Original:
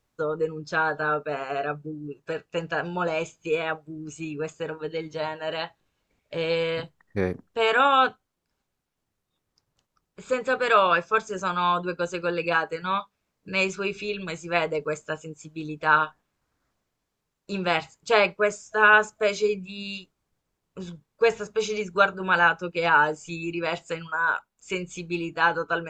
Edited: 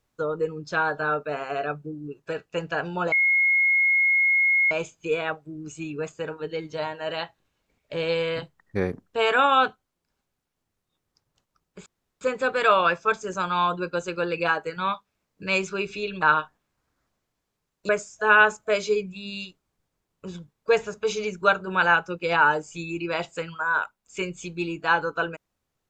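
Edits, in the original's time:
0:03.12: insert tone 2,160 Hz −17 dBFS 1.59 s
0:10.27: splice in room tone 0.35 s
0:14.28–0:15.86: remove
0:17.53–0:18.42: remove

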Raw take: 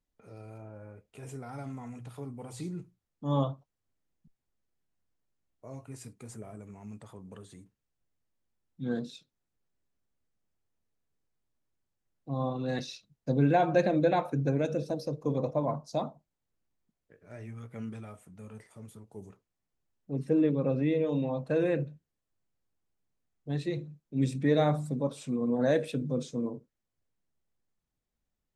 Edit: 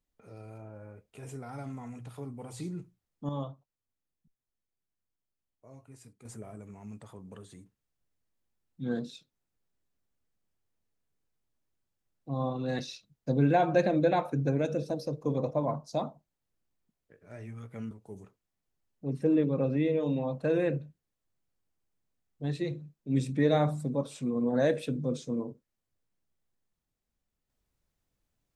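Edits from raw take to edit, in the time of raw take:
0:03.29–0:06.25: clip gain −8 dB
0:17.91–0:18.97: remove

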